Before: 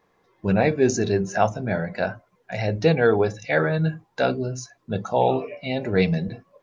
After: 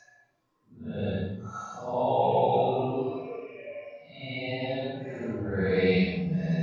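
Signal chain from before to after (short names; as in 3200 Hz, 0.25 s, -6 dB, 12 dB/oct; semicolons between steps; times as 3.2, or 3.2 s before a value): Paulstretch 4.5×, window 0.10 s, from 4.7; gain -6 dB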